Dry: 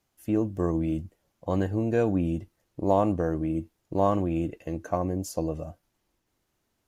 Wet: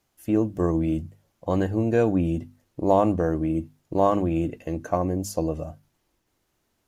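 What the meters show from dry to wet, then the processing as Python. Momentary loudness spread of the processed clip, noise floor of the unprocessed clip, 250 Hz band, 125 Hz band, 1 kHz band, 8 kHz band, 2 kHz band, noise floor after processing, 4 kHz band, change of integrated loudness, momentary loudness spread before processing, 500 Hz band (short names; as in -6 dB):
11 LU, -77 dBFS, +3.0 dB, +2.5 dB, +3.5 dB, +3.5 dB, +3.5 dB, -73 dBFS, n/a, +3.0 dB, 11 LU, +3.5 dB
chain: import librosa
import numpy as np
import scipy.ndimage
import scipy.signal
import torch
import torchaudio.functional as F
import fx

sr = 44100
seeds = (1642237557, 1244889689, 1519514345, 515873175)

y = fx.hum_notches(x, sr, base_hz=50, count=5)
y = y * librosa.db_to_amplitude(3.5)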